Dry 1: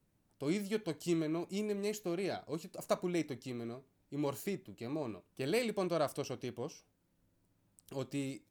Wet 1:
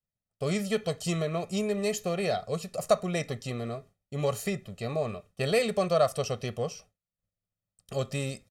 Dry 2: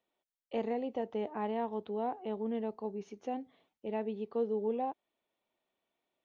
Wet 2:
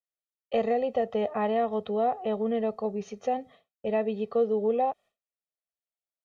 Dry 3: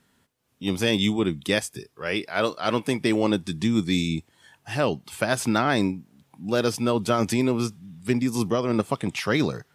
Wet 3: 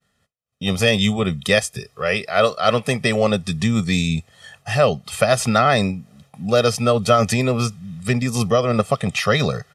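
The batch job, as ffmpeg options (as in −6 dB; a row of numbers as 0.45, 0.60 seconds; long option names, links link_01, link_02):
-filter_complex "[0:a]lowpass=11000,aecho=1:1:1.6:0.91,agate=range=-33dB:threshold=-54dB:ratio=3:detection=peak,asplit=2[link_01][link_02];[link_02]acompressor=threshold=-34dB:ratio=6,volume=-1dB[link_03];[link_01][link_03]amix=inputs=2:normalize=0,volume=3dB"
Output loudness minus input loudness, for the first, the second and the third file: +8.0, +8.5, +5.5 LU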